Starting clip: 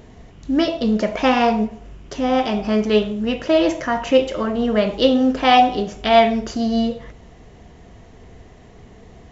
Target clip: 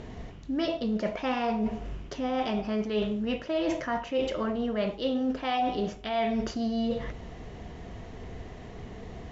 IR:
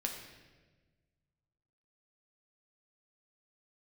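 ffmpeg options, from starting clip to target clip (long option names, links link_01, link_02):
-af "lowpass=5700,areverse,acompressor=threshold=-29dB:ratio=6,areverse,volume=2dB"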